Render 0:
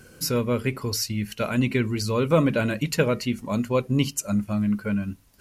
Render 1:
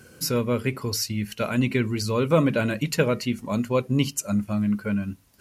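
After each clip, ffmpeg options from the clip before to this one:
ffmpeg -i in.wav -af "highpass=60" out.wav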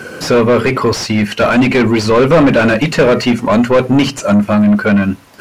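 ffmpeg -i in.wav -filter_complex "[0:a]bandreject=frequency=60:width_type=h:width=6,bandreject=frequency=120:width_type=h:width=6,asplit=2[link_01][link_02];[link_02]highpass=frequency=720:poles=1,volume=28dB,asoftclip=type=tanh:threshold=-8dB[link_03];[link_01][link_03]amix=inputs=2:normalize=0,lowpass=frequency=1200:poles=1,volume=-6dB,acrossover=split=10000[link_04][link_05];[link_05]acompressor=threshold=-54dB:ratio=4:attack=1:release=60[link_06];[link_04][link_06]amix=inputs=2:normalize=0,volume=7.5dB" out.wav

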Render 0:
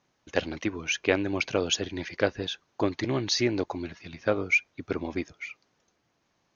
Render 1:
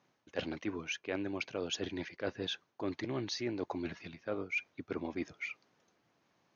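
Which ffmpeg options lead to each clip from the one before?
ffmpeg -i in.wav -af "highpass=110,highshelf=frequency=6300:gain=-10,areverse,acompressor=threshold=-34dB:ratio=6,areverse" out.wav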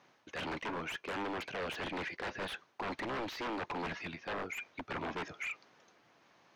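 ffmpeg -i in.wav -filter_complex "[0:a]aeval=exprs='0.0119*(abs(mod(val(0)/0.0119+3,4)-2)-1)':channel_layout=same,asplit=2[link_01][link_02];[link_02]highpass=frequency=720:poles=1,volume=7dB,asoftclip=type=tanh:threshold=-38dB[link_03];[link_01][link_03]amix=inputs=2:normalize=0,lowpass=frequency=3900:poles=1,volume=-6dB,acrossover=split=3100[link_04][link_05];[link_05]acompressor=threshold=-59dB:ratio=4:attack=1:release=60[link_06];[link_04][link_06]amix=inputs=2:normalize=0,volume=7.5dB" out.wav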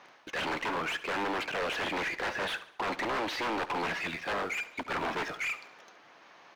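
ffmpeg -i in.wav -filter_complex "[0:a]asplit=2[link_01][link_02];[link_02]acrusher=bits=6:dc=4:mix=0:aa=0.000001,volume=-4dB[link_03];[link_01][link_03]amix=inputs=2:normalize=0,asplit=2[link_04][link_05];[link_05]highpass=frequency=720:poles=1,volume=17dB,asoftclip=type=tanh:threshold=-26.5dB[link_06];[link_04][link_06]amix=inputs=2:normalize=0,lowpass=frequency=3200:poles=1,volume=-6dB,aecho=1:1:71|142|213|284:0.158|0.0729|0.0335|0.0154,volume=1dB" out.wav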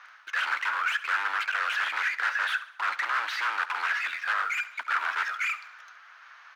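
ffmpeg -i in.wav -af "highpass=frequency=1400:width_type=q:width=3.8" out.wav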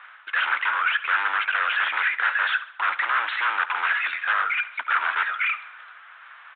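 ffmpeg -i in.wav -af "aresample=8000,aresample=44100,volume=5dB" out.wav

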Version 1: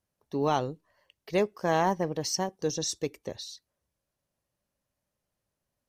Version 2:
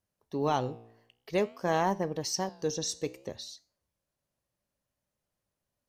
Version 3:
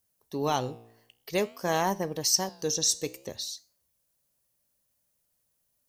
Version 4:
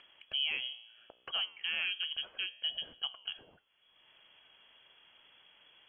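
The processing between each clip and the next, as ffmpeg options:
ffmpeg -i in.wav -af "flanger=delay=9.9:depth=7.7:regen=86:speed=0.53:shape=sinusoidal,volume=2.5dB" out.wav
ffmpeg -i in.wav -af "aemphasis=mode=production:type=75kf" out.wav
ffmpeg -i in.wav -af "lowpass=frequency=2900:width_type=q:width=0.5098,lowpass=frequency=2900:width_type=q:width=0.6013,lowpass=frequency=2900:width_type=q:width=0.9,lowpass=frequency=2900:width_type=q:width=2.563,afreqshift=-3400,acompressor=mode=upward:threshold=-42dB:ratio=2.5,alimiter=level_in=0.5dB:limit=-24dB:level=0:latency=1:release=468,volume=-0.5dB" out.wav

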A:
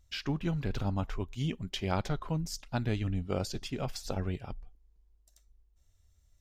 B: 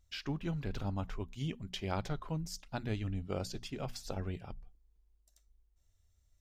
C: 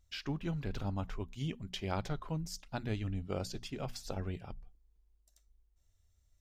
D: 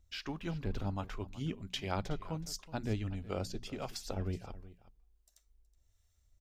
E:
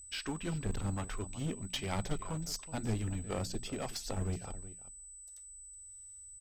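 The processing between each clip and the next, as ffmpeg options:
ffmpeg -i in.wav -af "bandreject=frequency=60:width_type=h:width=6,bandreject=frequency=120:width_type=h:width=6,bandreject=frequency=180:width_type=h:width=6,bandreject=frequency=240:width_type=h:width=6,volume=-4.5dB" out.wav
ffmpeg -i in.wav -af anull out.wav
ffmpeg -i in.wav -filter_complex "[0:a]equalizer=frequency=140:width_type=o:width=0.28:gain=-7.5,acrossover=split=610[link_01][link_02];[link_01]aeval=exprs='val(0)*(1-0.5/2+0.5/2*cos(2*PI*1.4*n/s))':channel_layout=same[link_03];[link_02]aeval=exprs='val(0)*(1-0.5/2-0.5/2*cos(2*PI*1.4*n/s))':channel_layout=same[link_04];[link_03][link_04]amix=inputs=2:normalize=0,aecho=1:1:371:0.133,volume=3dB" out.wav
ffmpeg -i in.wav -af "aresample=32000,aresample=44100,aeval=exprs='val(0)+0.00251*sin(2*PI*8000*n/s)':channel_layout=same,aeval=exprs='clip(val(0),-1,0.0141)':channel_layout=same,volume=3dB" out.wav

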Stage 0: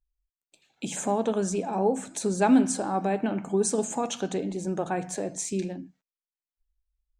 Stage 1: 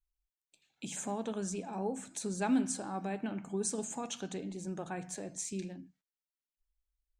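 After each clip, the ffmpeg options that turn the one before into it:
ffmpeg -i in.wav -af "equalizer=frequency=550:width_type=o:width=2.2:gain=-6.5,volume=-6.5dB" out.wav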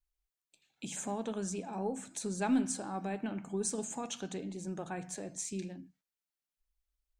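ffmpeg -i in.wav -af "aeval=exprs='0.1*(cos(1*acos(clip(val(0)/0.1,-1,1)))-cos(1*PI/2))+0.00126*(cos(4*acos(clip(val(0)/0.1,-1,1)))-cos(4*PI/2))':channel_layout=same" out.wav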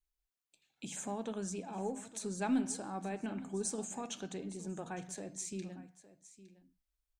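ffmpeg -i in.wav -af "aecho=1:1:861:0.141,volume=-2.5dB" out.wav

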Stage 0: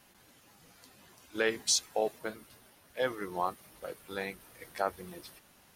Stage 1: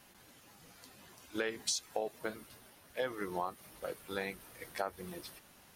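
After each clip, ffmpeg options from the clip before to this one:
ffmpeg -i in.wav -af "acompressor=threshold=-33dB:ratio=6,volume=1dB" out.wav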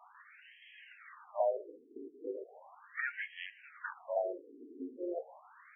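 ffmpeg -i in.wav -af "aeval=exprs='0.106*(cos(1*acos(clip(val(0)/0.106,-1,1)))-cos(1*PI/2))+0.0299*(cos(5*acos(clip(val(0)/0.106,-1,1)))-cos(5*PI/2))+0.0119*(cos(8*acos(clip(val(0)/0.106,-1,1)))-cos(8*PI/2))':channel_layout=same,afreqshift=170,afftfilt=real='re*between(b*sr/1024,310*pow(2400/310,0.5+0.5*sin(2*PI*0.37*pts/sr))/1.41,310*pow(2400/310,0.5+0.5*sin(2*PI*0.37*pts/sr))*1.41)':imag='im*between(b*sr/1024,310*pow(2400/310,0.5+0.5*sin(2*PI*0.37*pts/sr))/1.41,310*pow(2400/310,0.5+0.5*sin(2*PI*0.37*pts/sr))*1.41)':win_size=1024:overlap=0.75,volume=2dB" out.wav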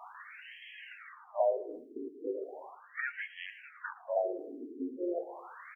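ffmpeg -i in.wav -filter_complex "[0:a]asplit=2[link_01][link_02];[link_02]adelay=112,lowpass=frequency=930:poles=1,volume=-17dB,asplit=2[link_03][link_04];[link_04]adelay=112,lowpass=frequency=930:poles=1,volume=0.35,asplit=2[link_05][link_06];[link_06]adelay=112,lowpass=frequency=930:poles=1,volume=0.35[link_07];[link_01][link_03][link_05][link_07]amix=inputs=4:normalize=0,areverse,acompressor=mode=upward:threshold=-41dB:ratio=2.5,areverse,lowshelf=frequency=470:gain=7.5" out.wav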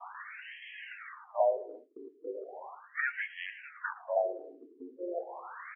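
ffmpeg -i in.wav -af "highpass=660,lowpass=2700,agate=range=-33dB:threshold=-53dB:ratio=3:detection=peak,volume=5dB" out.wav

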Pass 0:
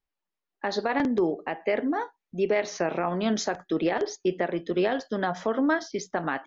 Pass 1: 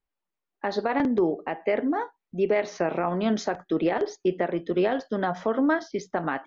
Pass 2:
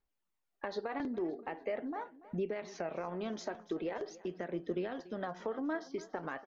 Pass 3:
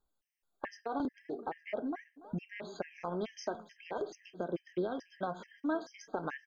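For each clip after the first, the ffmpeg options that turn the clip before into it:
ffmpeg -i in.wav -af "lowpass=frequency=2600:poles=1,bandreject=frequency=1700:width=29,volume=1.5dB" out.wav
ffmpeg -i in.wav -af "acompressor=threshold=-39dB:ratio=2.5,aphaser=in_gain=1:out_gain=1:delay=3.2:decay=0.36:speed=0.43:type=triangular,aecho=1:1:287|574|861|1148:0.119|0.057|0.0274|0.0131,volume=-2dB" out.wav
ffmpeg -i in.wav -af "afftfilt=real='re*gt(sin(2*PI*2.3*pts/sr)*(1-2*mod(floor(b*sr/1024/1600),2)),0)':imag='im*gt(sin(2*PI*2.3*pts/sr)*(1-2*mod(floor(b*sr/1024/1600),2)),0)':win_size=1024:overlap=0.75,volume=3.5dB" out.wav

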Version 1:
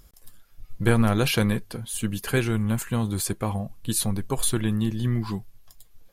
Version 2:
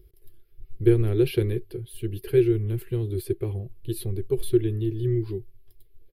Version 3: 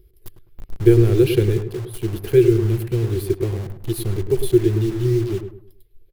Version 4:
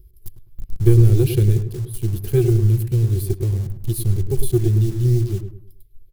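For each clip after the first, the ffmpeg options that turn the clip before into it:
ffmpeg -i in.wav -af "firequalizer=gain_entry='entry(120,0);entry(250,-21);entry(360,13);entry(550,-13);entry(1000,-22);entry(2100,-10);entry(3000,-10);entry(4500,-13);entry(6800,-29);entry(11000,-9)':delay=0.05:min_phase=1" out.wav
ffmpeg -i in.wav -filter_complex "[0:a]asplit=2[link_01][link_02];[link_02]acrusher=bits=5:mix=0:aa=0.000001,volume=-4dB[link_03];[link_01][link_03]amix=inputs=2:normalize=0,asplit=2[link_04][link_05];[link_05]adelay=104,lowpass=frequency=1300:poles=1,volume=-7.5dB,asplit=2[link_06][link_07];[link_07]adelay=104,lowpass=frequency=1300:poles=1,volume=0.35,asplit=2[link_08][link_09];[link_09]adelay=104,lowpass=frequency=1300:poles=1,volume=0.35,asplit=2[link_10][link_11];[link_11]adelay=104,lowpass=frequency=1300:poles=1,volume=0.35[link_12];[link_04][link_06][link_08][link_10][link_12]amix=inputs=5:normalize=0,volume=1.5dB" out.wav
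ffmpeg -i in.wav -af "aeval=exprs='0.891*(cos(1*acos(clip(val(0)/0.891,-1,1)))-cos(1*PI/2))+0.0282*(cos(6*acos(clip(val(0)/0.891,-1,1)))-cos(6*PI/2))':channel_layout=same,bass=frequency=250:gain=15,treble=frequency=4000:gain=13,volume=-9.5dB" out.wav

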